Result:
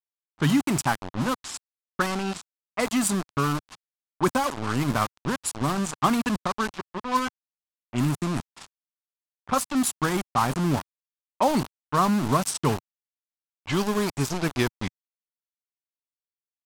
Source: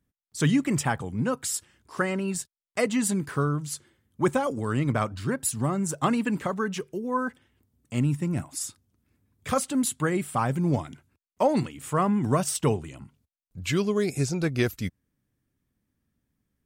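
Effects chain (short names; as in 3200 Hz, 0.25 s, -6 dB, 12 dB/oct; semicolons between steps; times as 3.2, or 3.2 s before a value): sample gate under -27.5 dBFS; low-pass opened by the level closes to 1200 Hz, open at -21.5 dBFS; graphic EQ 125/500/1000/2000 Hz -4/-7/+4/-4 dB; gain +3.5 dB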